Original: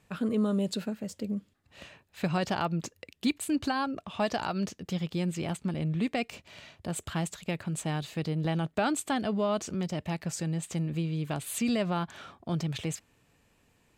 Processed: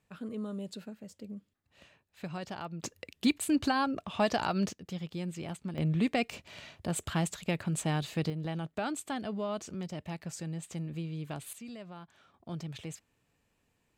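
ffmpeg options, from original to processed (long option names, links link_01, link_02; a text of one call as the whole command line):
ffmpeg -i in.wav -af "asetnsamples=nb_out_samples=441:pad=0,asendcmd='2.83 volume volume 1dB;4.73 volume volume -6.5dB;5.78 volume volume 1dB;8.3 volume volume -6.5dB;11.53 volume volume -17dB;12.34 volume volume -8.5dB',volume=-10.5dB" out.wav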